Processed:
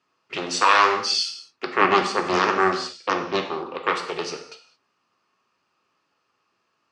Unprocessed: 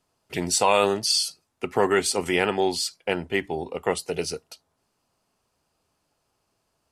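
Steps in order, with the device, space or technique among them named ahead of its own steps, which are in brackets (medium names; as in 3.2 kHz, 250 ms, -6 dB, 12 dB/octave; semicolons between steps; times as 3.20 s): 1.81–3.47 s: tilt shelf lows +4.5 dB; full-range speaker at full volume (loudspeaker Doppler distortion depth 0.98 ms; cabinet simulation 190–6100 Hz, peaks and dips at 670 Hz -6 dB, 1.2 kHz +10 dB, 1.8 kHz +6 dB, 2.6 kHz +7 dB); gated-style reverb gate 240 ms falling, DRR 3.5 dB; trim -1 dB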